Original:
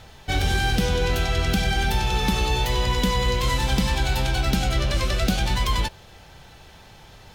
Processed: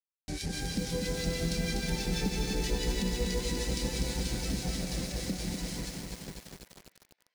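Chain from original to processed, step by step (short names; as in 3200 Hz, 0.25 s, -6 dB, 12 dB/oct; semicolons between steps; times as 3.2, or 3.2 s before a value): Doppler pass-by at 2.22, 5 m/s, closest 3.1 m; in parallel at +1 dB: limiter -22 dBFS, peak gain reduction 9.5 dB; on the sum: FDN reverb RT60 2.6 s, low-frequency decay 1.5×, high-frequency decay 0.7×, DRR 3 dB; harmonic tremolo 6.2 Hz, depth 100%, crossover 1500 Hz; requantised 6-bit, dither none; resonant low shelf 140 Hz -7.5 dB, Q 3; on a send: band-limited delay 0.539 s, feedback 31%, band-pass 1500 Hz, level -12.5 dB; on the sum: compressor 5:1, threshold -26 dBFS, peak gain reduction 13 dB; EQ curve 120 Hz 0 dB, 230 Hz -6 dB, 510 Hz -5 dB, 800 Hz -15 dB, 1200 Hz -18 dB, 2000 Hz -7 dB, 3100 Hz -13 dB, 4700 Hz -1 dB, 10000 Hz -4 dB, 15000 Hz -22 dB; lo-fi delay 0.246 s, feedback 80%, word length 8-bit, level -4 dB; gain +1 dB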